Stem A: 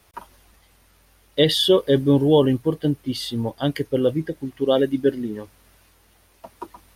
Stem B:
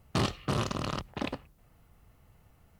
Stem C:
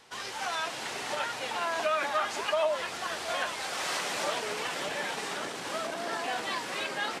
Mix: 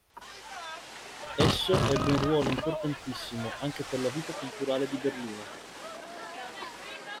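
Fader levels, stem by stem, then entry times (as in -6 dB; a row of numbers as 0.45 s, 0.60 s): -11.0 dB, +3.0 dB, -8.0 dB; 0.00 s, 1.25 s, 0.10 s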